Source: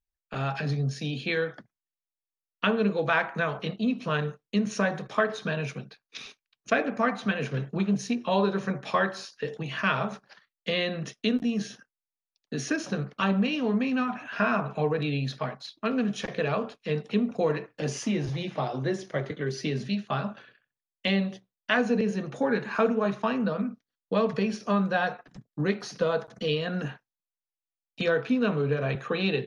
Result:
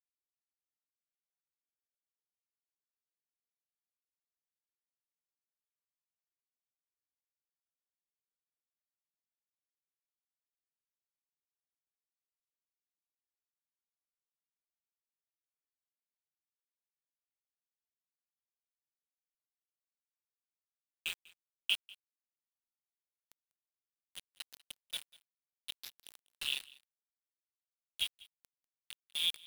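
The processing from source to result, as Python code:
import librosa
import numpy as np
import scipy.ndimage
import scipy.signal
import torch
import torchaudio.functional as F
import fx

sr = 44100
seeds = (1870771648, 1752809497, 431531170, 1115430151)

p1 = fx.pitch_glide(x, sr, semitones=-2.0, runs='starting unshifted')
p2 = fx.dereverb_blind(p1, sr, rt60_s=1.4)
p3 = scipy.signal.sosfilt(scipy.signal.cheby2(4, 40, [130.0, 2000.0], 'bandstop', fs=sr, output='sos'), p2)
p4 = fx.high_shelf(p3, sr, hz=7200.0, db=5.5)
p5 = fx.level_steps(p4, sr, step_db=17)
p6 = p4 + (p5 * 10.0 ** (-2.5 / 20.0))
p7 = fx.filter_sweep_lowpass(p6, sr, from_hz=360.0, to_hz=3000.0, start_s=17.7, end_s=21.48, q=5.5)
p8 = np.where(np.abs(p7) >= 10.0 ** (-35.5 / 20.0), p7, 0.0)
p9 = p8 + fx.echo_single(p8, sr, ms=195, db=-22.5, dry=0)
y = p9 * 10.0 ** (1.0 / 20.0)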